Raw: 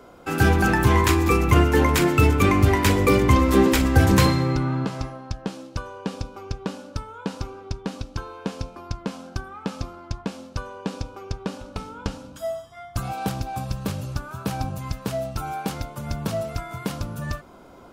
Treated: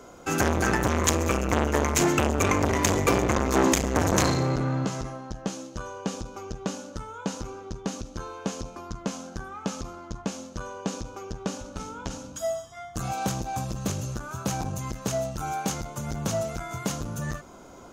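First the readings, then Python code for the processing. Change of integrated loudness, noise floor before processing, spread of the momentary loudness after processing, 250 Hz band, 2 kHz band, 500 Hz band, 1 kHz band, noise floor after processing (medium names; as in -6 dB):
-5.0 dB, -46 dBFS, 15 LU, -5.0 dB, -4.5 dB, -3.0 dB, -3.0 dB, -46 dBFS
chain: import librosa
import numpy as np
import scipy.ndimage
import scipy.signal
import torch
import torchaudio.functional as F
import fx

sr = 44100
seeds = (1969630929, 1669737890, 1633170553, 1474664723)

y = fx.peak_eq(x, sr, hz=6500.0, db=14.5, octaves=0.38)
y = fx.transformer_sat(y, sr, knee_hz=1300.0)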